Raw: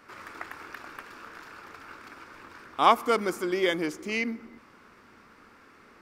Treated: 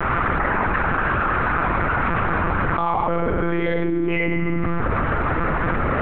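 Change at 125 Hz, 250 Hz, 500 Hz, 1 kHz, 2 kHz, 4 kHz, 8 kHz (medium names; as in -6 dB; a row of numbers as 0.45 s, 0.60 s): +25.0 dB, +11.0 dB, +7.0 dB, +8.5 dB, +13.0 dB, -3.0 dB, under -30 dB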